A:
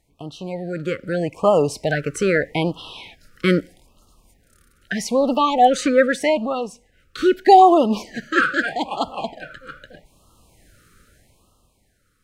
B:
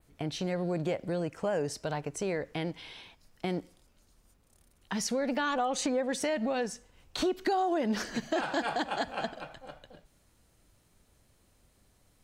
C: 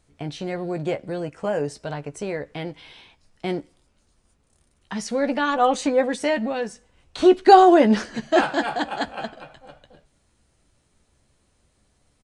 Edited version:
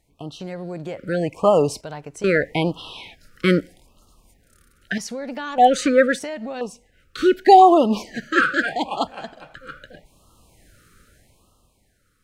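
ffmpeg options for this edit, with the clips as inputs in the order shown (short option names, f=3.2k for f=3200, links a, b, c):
-filter_complex "[1:a]asplit=5[a][b][c][d][e];[0:a]asplit=6[f][g][h][i][j][k];[f]atrim=end=0.402[l];[a]atrim=start=0.398:end=0.972[m];[g]atrim=start=0.968:end=1.812[n];[b]atrim=start=1.808:end=2.242[o];[h]atrim=start=2.238:end=4.982[p];[c]atrim=start=4.978:end=5.582[q];[i]atrim=start=5.578:end=6.192[r];[d]atrim=start=6.188:end=6.612[s];[j]atrim=start=6.608:end=9.072[t];[e]atrim=start=9.068:end=9.552[u];[k]atrim=start=9.548[v];[l][m]acrossfade=d=0.004:c1=hsin:c2=hsin[w];[w][n]acrossfade=d=0.004:c1=hsin:c2=hsin[x];[x][o]acrossfade=d=0.004:c1=hsin:c2=hsin[y];[y][p]acrossfade=d=0.004:c1=hsin:c2=hsin[z];[z][q]acrossfade=d=0.004:c1=hsin:c2=hsin[aa];[aa][r]acrossfade=d=0.004:c1=hsin:c2=hsin[ab];[ab][s]acrossfade=d=0.004:c1=hsin:c2=hsin[ac];[ac][t]acrossfade=d=0.004:c1=hsin:c2=hsin[ad];[ad][u]acrossfade=d=0.004:c1=hsin:c2=hsin[ae];[ae][v]acrossfade=d=0.004:c1=hsin:c2=hsin"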